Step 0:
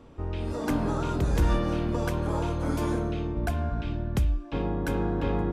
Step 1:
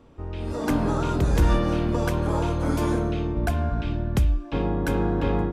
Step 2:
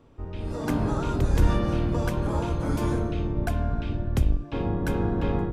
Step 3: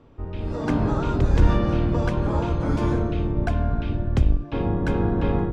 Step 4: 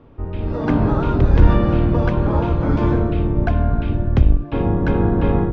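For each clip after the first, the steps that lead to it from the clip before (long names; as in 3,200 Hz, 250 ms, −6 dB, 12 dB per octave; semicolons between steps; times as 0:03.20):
automatic gain control gain up to 6 dB; level −2 dB
sub-octave generator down 1 octave, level −1 dB; level −3.5 dB
high-frequency loss of the air 100 metres; level +3.5 dB
high-frequency loss of the air 200 metres; level +5.5 dB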